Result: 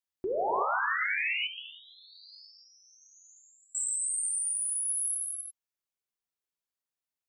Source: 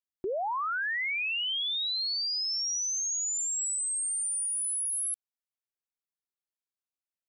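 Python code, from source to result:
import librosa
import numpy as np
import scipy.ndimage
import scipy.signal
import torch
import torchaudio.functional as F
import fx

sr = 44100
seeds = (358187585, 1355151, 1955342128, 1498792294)

y = fx.rider(x, sr, range_db=3, speed_s=0.5)
y = fx.rev_gated(y, sr, seeds[0], gate_ms=380, shape='flat', drr_db=-1.5)
y = fx.vowel_sweep(y, sr, vowels='i-u', hz=1.1, at=(1.47, 3.75))
y = y * librosa.db_to_amplitude(-3.5)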